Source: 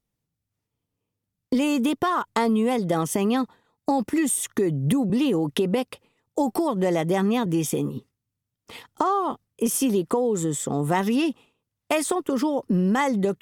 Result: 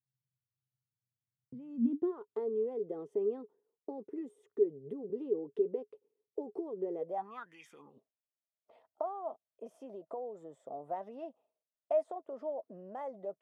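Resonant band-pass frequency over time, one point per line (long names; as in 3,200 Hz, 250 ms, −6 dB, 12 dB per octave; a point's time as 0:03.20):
resonant band-pass, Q 14
0:01.54 130 Hz
0:02.15 420 Hz
0:06.97 420 Hz
0:07.60 2,300 Hz
0:07.95 640 Hz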